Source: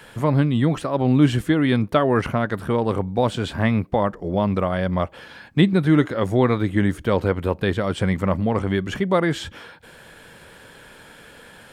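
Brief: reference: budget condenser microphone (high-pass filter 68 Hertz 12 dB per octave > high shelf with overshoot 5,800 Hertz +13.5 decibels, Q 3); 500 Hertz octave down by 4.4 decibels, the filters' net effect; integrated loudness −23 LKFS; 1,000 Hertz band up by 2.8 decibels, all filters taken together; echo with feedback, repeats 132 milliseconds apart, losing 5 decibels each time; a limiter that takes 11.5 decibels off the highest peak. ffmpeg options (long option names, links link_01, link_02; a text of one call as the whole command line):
ffmpeg -i in.wav -af "equalizer=frequency=500:width_type=o:gain=-7,equalizer=frequency=1000:width_type=o:gain=6,alimiter=limit=-17dB:level=0:latency=1,highpass=68,highshelf=frequency=5800:width_type=q:width=3:gain=13.5,aecho=1:1:132|264|396|528|660|792|924:0.562|0.315|0.176|0.0988|0.0553|0.031|0.0173,volume=2.5dB" out.wav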